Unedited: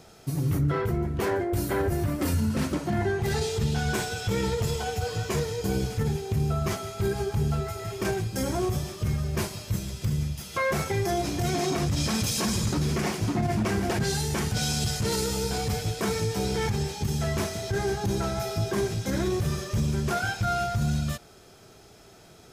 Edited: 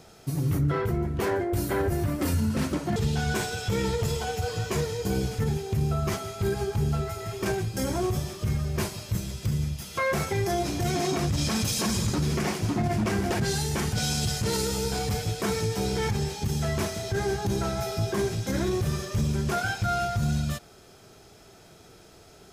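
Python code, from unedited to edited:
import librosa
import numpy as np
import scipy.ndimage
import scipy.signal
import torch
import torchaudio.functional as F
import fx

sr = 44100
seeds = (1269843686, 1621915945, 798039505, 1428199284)

y = fx.edit(x, sr, fx.cut(start_s=2.96, length_s=0.59), tone=tone)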